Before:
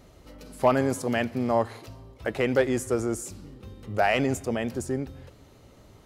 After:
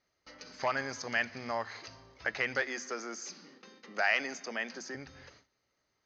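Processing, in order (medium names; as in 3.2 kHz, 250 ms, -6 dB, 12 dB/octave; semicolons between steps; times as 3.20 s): compression 1.5:1, threshold -30 dBFS, peak gain reduction 5.5 dB; rippled Chebyshev low-pass 6.5 kHz, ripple 9 dB; dynamic bell 360 Hz, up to -5 dB, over -47 dBFS, Q 0.96; 2.62–4.95 s: steep high-pass 160 Hz 72 dB/octave; gate with hold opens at -48 dBFS; tilt EQ +2.5 dB/octave; hum notches 50/100/150/200/250 Hz; trim +4 dB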